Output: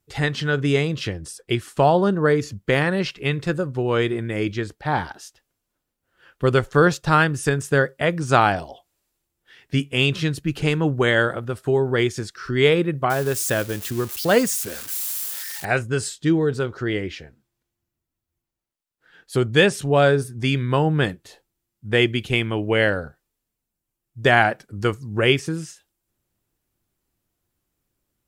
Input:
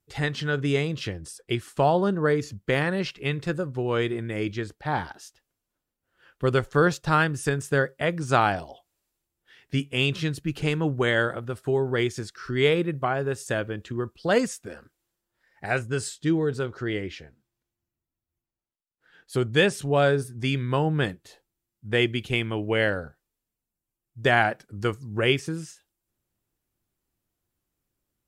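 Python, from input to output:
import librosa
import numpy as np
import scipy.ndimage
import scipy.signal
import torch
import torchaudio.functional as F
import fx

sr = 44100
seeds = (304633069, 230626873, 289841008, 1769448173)

y = fx.crossing_spikes(x, sr, level_db=-26.0, at=(13.1, 15.65))
y = y * librosa.db_to_amplitude(4.5)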